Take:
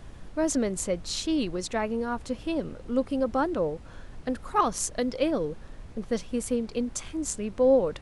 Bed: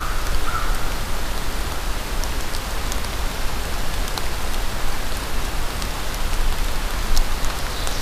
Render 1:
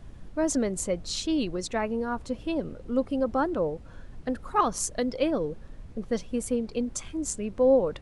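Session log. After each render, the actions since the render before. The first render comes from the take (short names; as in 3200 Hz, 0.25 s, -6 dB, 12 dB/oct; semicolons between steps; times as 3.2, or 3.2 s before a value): denoiser 6 dB, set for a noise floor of -46 dBFS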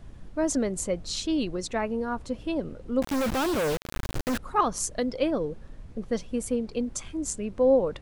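3.02–4.38 companded quantiser 2-bit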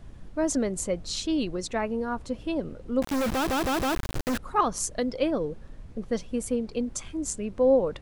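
3.31 stutter in place 0.16 s, 4 plays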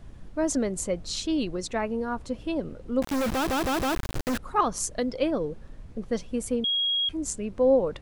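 6.64–7.09 bleep 3290 Hz -22.5 dBFS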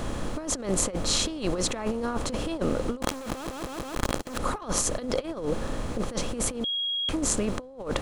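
per-bin compression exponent 0.6; negative-ratio compressor -28 dBFS, ratio -0.5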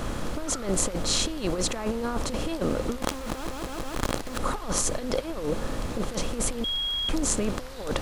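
add bed -16.5 dB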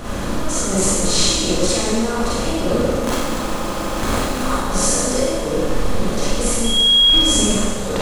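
Schroeder reverb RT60 1.6 s, combs from 31 ms, DRR -9.5 dB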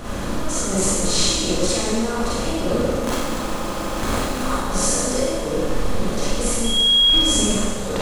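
gain -2.5 dB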